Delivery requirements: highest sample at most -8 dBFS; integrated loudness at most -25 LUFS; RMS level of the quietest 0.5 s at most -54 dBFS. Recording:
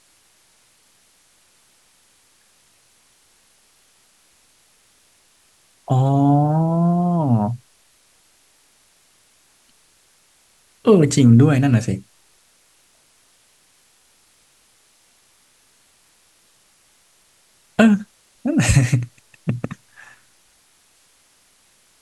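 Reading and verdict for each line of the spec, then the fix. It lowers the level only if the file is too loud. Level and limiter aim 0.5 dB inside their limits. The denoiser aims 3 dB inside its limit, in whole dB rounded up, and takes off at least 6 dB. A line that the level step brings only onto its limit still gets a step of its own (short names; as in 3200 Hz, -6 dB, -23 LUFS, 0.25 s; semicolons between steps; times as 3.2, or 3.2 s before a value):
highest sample -3.0 dBFS: fail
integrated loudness -17.5 LUFS: fail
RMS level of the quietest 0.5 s -58 dBFS: OK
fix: gain -8 dB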